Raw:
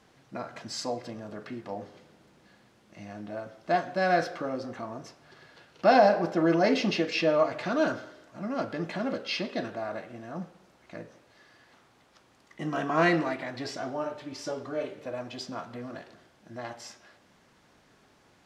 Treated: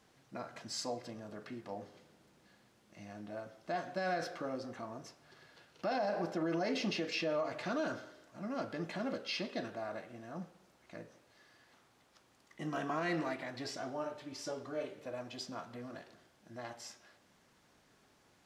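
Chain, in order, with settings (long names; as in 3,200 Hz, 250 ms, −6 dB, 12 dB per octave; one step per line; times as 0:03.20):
high-shelf EQ 6,300 Hz +7 dB
brickwall limiter −19.5 dBFS, peak gain reduction 11 dB
level −7 dB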